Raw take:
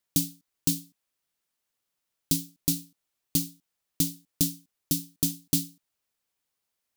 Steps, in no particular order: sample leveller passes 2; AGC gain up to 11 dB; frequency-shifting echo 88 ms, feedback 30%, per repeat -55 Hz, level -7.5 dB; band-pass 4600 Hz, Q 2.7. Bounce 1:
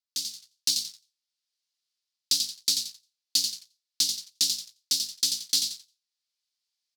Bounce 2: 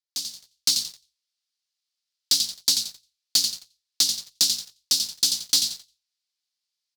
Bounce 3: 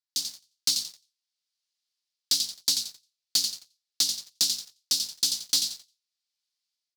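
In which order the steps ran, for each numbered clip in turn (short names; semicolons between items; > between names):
frequency-shifting echo > sample leveller > AGC > band-pass; band-pass > frequency-shifting echo > sample leveller > AGC; AGC > frequency-shifting echo > band-pass > sample leveller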